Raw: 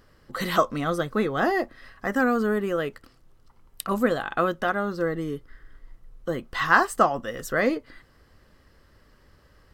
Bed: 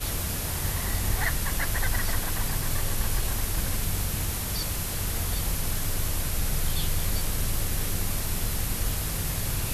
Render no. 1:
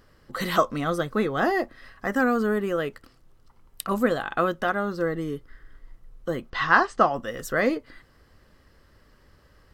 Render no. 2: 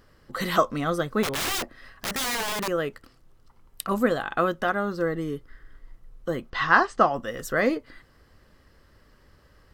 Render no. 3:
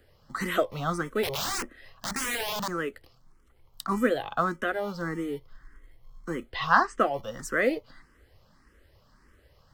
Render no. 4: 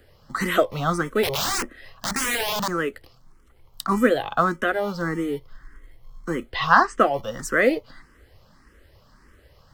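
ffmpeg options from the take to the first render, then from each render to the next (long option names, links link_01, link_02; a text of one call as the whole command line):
ffmpeg -i in.wav -filter_complex "[0:a]asettb=1/sr,asplit=3[link_01][link_02][link_03];[link_01]atrim=end=6.504[link_04];[link_02]atrim=start=6.5:end=7.13,asetpts=PTS-STARTPTS,afade=type=in:duration=0.004:curve=qsin,afade=type=out:start_time=0.626:duration=0.004:curve=qsin,lowpass=frequency=5700:width=0.5412,lowpass=frequency=5700:width=1.3066[link_05];[link_03]atrim=start=7.126[link_06];[link_04][link_05]acrossfade=duration=0.004:curve1=hsin:curve2=qsin[link_07];[link_07][link_06]acrossfade=duration=0.004:curve1=qsin:curve2=hsin" out.wav
ffmpeg -i in.wav -filter_complex "[0:a]asettb=1/sr,asplit=3[link_01][link_02][link_03];[link_01]atrim=end=1.234[link_04];[link_02]atrim=start=1.23:end=2.68,asetpts=PTS-STARTPTS,afade=type=in:duration=0.004:curve=qsin,afade=type=out:start_time=1.446:duration=0.004:curve=qsin,aeval=exprs='(mod(14.1*val(0)+1,2)-1)/14.1':channel_layout=same[link_05];[link_03]atrim=start=2.676[link_06];[link_04][link_05]acrossfade=duration=0.004:curve1=hsin:curve2=qsin[link_07];[link_07][link_06]acrossfade=duration=0.004:curve1=qsin:curve2=hsin" out.wav
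ffmpeg -i in.wav -filter_complex "[0:a]acrossover=split=190|550|7500[link_01][link_02][link_03][link_04];[link_01]acrusher=samples=41:mix=1:aa=0.000001[link_05];[link_05][link_02][link_03][link_04]amix=inputs=4:normalize=0,asplit=2[link_06][link_07];[link_07]afreqshift=1.7[link_08];[link_06][link_08]amix=inputs=2:normalize=1" out.wav
ffmpeg -i in.wav -af "volume=6dB,alimiter=limit=-1dB:level=0:latency=1" out.wav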